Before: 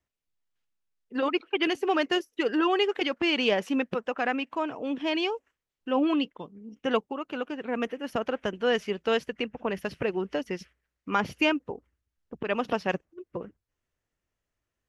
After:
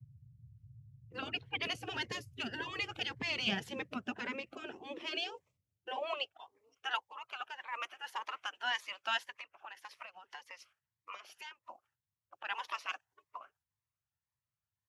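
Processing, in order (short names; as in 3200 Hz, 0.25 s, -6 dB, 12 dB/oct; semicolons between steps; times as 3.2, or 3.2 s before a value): gate -59 dBFS, range -10 dB; spectral gate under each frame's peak -10 dB weak; dynamic EQ 1100 Hz, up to -3 dB, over -46 dBFS, Q 1.4; 9.32–11.64 compressor 10:1, threshold -43 dBFS, peak gain reduction 15 dB; band noise 46–120 Hz -55 dBFS; high-pass sweep 130 Hz -> 970 Hz, 3.46–6.72; cascading phaser rising 1.8 Hz; gain -2 dB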